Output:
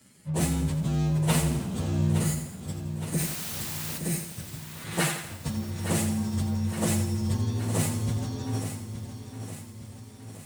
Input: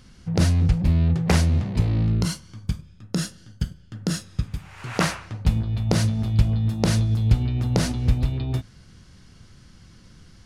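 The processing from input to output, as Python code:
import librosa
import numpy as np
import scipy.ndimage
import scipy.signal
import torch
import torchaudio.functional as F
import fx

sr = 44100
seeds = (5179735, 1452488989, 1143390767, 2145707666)

p1 = fx.partial_stretch(x, sr, pct=117)
p2 = scipy.signal.sosfilt(scipy.signal.bessel(4, 150.0, 'highpass', norm='mag', fs=sr, output='sos'), p1)
p3 = fx.peak_eq(p2, sr, hz=9000.0, db=7.0, octaves=0.63)
p4 = fx.quant_dither(p3, sr, seeds[0], bits=6, dither='triangular', at=(3.18, 3.97), fade=0.02)
p5 = p4 + fx.echo_feedback(p4, sr, ms=866, feedback_pct=55, wet_db=-10, dry=0)
y = fx.echo_crushed(p5, sr, ms=84, feedback_pct=55, bits=8, wet_db=-8.5)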